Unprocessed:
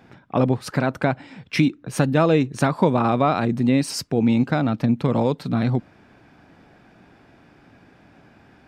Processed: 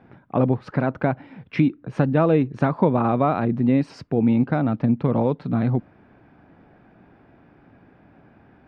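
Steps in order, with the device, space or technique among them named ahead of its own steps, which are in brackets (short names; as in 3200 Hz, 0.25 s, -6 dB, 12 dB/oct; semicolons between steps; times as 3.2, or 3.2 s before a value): phone in a pocket (LPF 3000 Hz 12 dB/oct; high shelf 2000 Hz -9 dB)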